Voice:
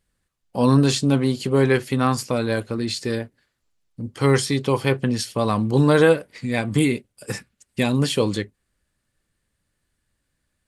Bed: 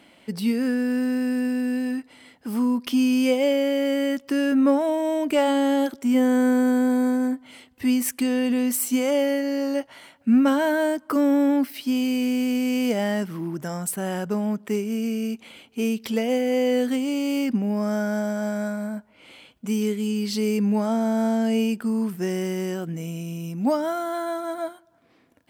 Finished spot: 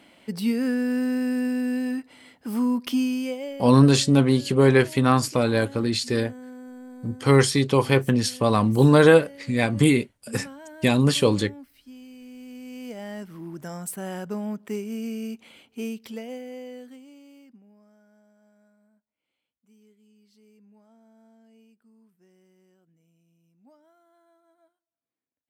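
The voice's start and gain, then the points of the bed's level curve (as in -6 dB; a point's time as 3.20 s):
3.05 s, +1.0 dB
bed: 2.90 s -1 dB
3.89 s -22 dB
12.18 s -22 dB
13.67 s -5.5 dB
15.71 s -5.5 dB
17.97 s -35 dB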